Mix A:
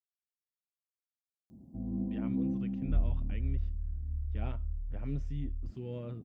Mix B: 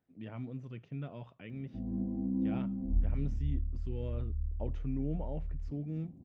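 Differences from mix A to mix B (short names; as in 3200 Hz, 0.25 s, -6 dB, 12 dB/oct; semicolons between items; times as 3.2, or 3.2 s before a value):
speech: entry -1.90 s; background: add tone controls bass -1 dB, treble -9 dB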